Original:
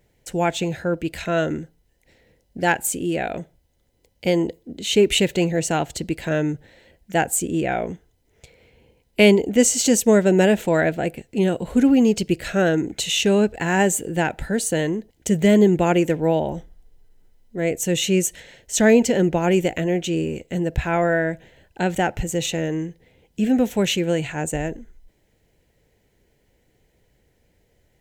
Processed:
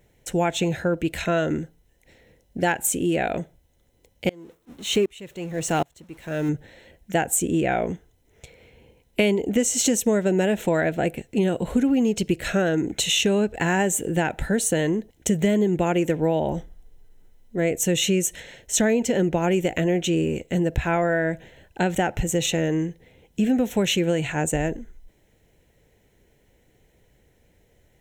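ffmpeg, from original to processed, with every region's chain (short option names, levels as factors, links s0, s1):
-filter_complex "[0:a]asettb=1/sr,asplit=3[s0][s1][s2];[s0]atrim=end=4.294[s3];[s1]atrim=start=4.29:end=6.49,asetpts=PTS-STARTPTS,afade=t=in:d=0.004:c=qsin,afade=t=out:st=2.196:d=0.004:c=qsin,aeval=exprs='val(0)+0.5*0.0282*sgn(val(0))':c=same,agate=range=0.0224:threshold=0.0398:ratio=3:release=100:detection=peak,aeval=exprs='val(0)*pow(10,-30*if(lt(mod(-1.3*n/s,1),2*abs(-1.3)/1000),1-mod(-1.3*n/s,1)/(2*abs(-1.3)/1000),(mod(-1.3*n/s,1)-2*abs(-1.3)/1000)/(1-2*abs(-1.3)/1000))/20)':c=same[s4];[s2]atrim=start=6.486[s5];[s3][s4]acrossfade=d=0.004:c1=hsin:c2=qsin[s6];[s6][s5]acrossfade=d=0.004:c1=qsin:c2=hsin,bandreject=f=4700:w=6,acompressor=threshold=0.1:ratio=6,volume=1.33"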